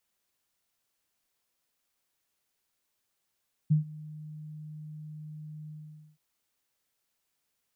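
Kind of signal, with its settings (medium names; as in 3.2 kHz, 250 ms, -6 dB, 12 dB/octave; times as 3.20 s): ADSR sine 153 Hz, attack 16 ms, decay 121 ms, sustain -22 dB, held 1.99 s, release 485 ms -18 dBFS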